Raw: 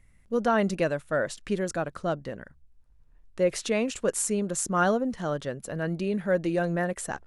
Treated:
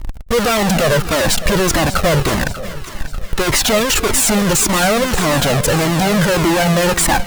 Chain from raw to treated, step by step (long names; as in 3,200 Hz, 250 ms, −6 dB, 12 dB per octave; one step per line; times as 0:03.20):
each half-wave held at its own peak
transient designer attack +8 dB, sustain −2 dB
fuzz pedal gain 49 dB, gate −51 dBFS
echo with a time of its own for lows and highs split 1,000 Hz, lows 305 ms, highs 590 ms, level −13.5 dB
flanger whose copies keep moving one way falling 1.7 Hz
level +4.5 dB